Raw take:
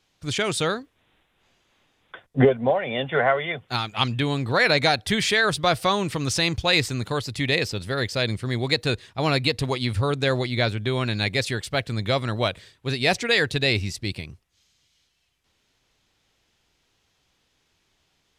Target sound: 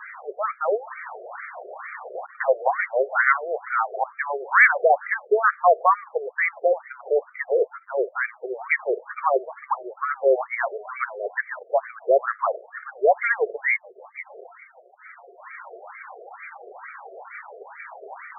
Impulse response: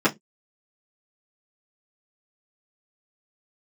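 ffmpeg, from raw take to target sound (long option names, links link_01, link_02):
-af "aeval=exprs='val(0)+0.5*0.0473*sgn(val(0))':channel_layout=same,afftdn=noise_reduction=31:noise_floor=-36,aeval=exprs='val(0)+0.0224*(sin(2*PI*50*n/s)+sin(2*PI*2*50*n/s)/2+sin(2*PI*3*50*n/s)/3+sin(2*PI*4*50*n/s)/4+sin(2*PI*5*50*n/s)/5)':channel_layout=same,afftfilt=real='re*between(b*sr/1024,490*pow(1700/490,0.5+0.5*sin(2*PI*2.2*pts/sr))/1.41,490*pow(1700/490,0.5+0.5*sin(2*PI*2.2*pts/sr))*1.41)':imag='im*between(b*sr/1024,490*pow(1700/490,0.5+0.5*sin(2*PI*2.2*pts/sr))/1.41,490*pow(1700/490,0.5+0.5*sin(2*PI*2.2*pts/sr))*1.41)':win_size=1024:overlap=0.75,volume=6.5dB"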